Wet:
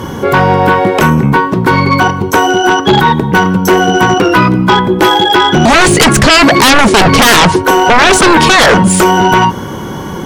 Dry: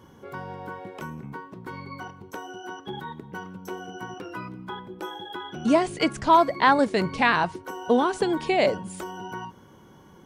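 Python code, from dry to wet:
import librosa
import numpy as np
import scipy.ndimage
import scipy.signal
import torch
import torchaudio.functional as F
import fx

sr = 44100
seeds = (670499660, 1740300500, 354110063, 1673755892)

p1 = fx.over_compress(x, sr, threshold_db=-26.0, ratio=-1.0)
p2 = x + F.gain(torch.from_numpy(p1), 2.5).numpy()
p3 = fx.fold_sine(p2, sr, drive_db=16, ceiling_db=-3.0)
y = F.gain(torch.from_numpy(p3), 1.0).numpy()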